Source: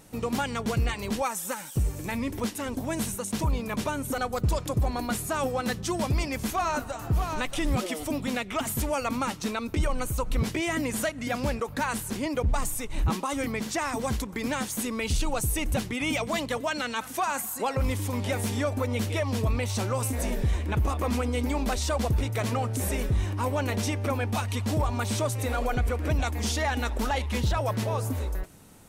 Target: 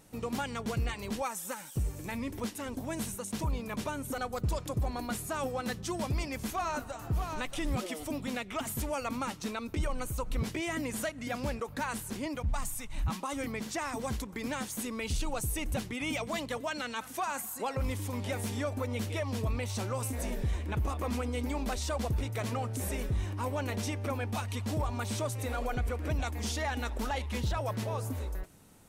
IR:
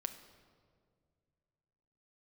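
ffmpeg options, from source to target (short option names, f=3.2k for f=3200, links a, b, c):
-filter_complex "[0:a]asettb=1/sr,asplit=3[a][b][c];[a]atrim=end=12.364[d];[b]atrim=start=12.36:end=13.22,asetpts=PTS-STARTPTS,afade=t=in:d=0.004:c=qsin,afade=t=out:st=0.856:d=0.004:c=qsin,equalizer=f=400:w=2.1:g=-13.5[e];[c]atrim=start=13.216[f];[d][e]acrossfade=d=0.004:c1=hsin:c2=qsin[g];[g][f]acrossfade=d=0.004:c1=qsin:c2=hsin,volume=-6dB"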